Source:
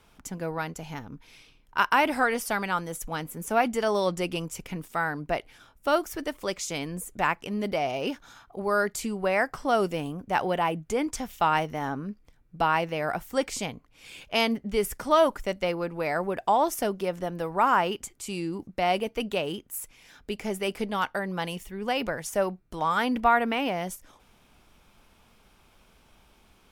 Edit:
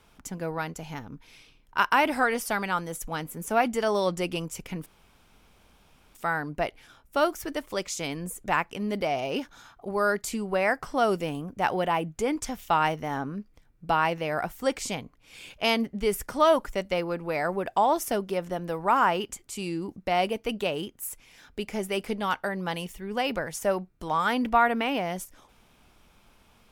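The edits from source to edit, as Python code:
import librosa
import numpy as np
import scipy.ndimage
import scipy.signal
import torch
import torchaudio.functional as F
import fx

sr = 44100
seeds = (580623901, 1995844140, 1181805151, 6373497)

y = fx.edit(x, sr, fx.insert_room_tone(at_s=4.86, length_s=1.29), tone=tone)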